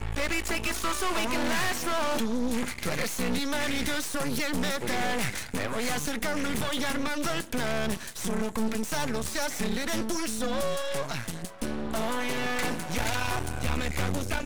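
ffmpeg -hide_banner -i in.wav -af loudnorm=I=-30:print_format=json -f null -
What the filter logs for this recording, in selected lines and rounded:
"input_i" : "-30.0",
"input_tp" : "-18.2",
"input_lra" : "2.2",
"input_thresh" : "-40.0",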